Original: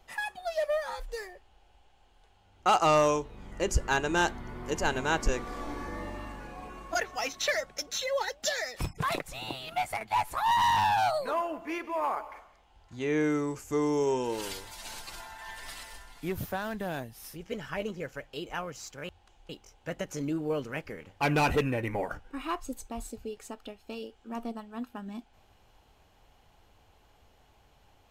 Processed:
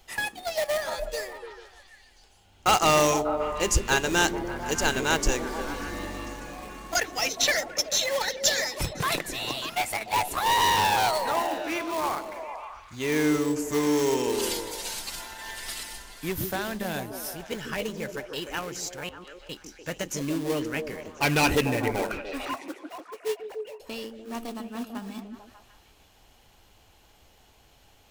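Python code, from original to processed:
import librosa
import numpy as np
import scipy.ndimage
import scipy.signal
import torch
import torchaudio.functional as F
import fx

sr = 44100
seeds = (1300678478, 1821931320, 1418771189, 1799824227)

p1 = fx.sine_speech(x, sr, at=(22.45, 23.8))
p2 = fx.sample_hold(p1, sr, seeds[0], rate_hz=1400.0, jitter_pct=20)
p3 = p1 + (p2 * librosa.db_to_amplitude(-11.0))
p4 = fx.high_shelf(p3, sr, hz=2200.0, db=11.0)
y = fx.echo_stepped(p4, sr, ms=148, hz=270.0, octaves=0.7, feedback_pct=70, wet_db=-2.5)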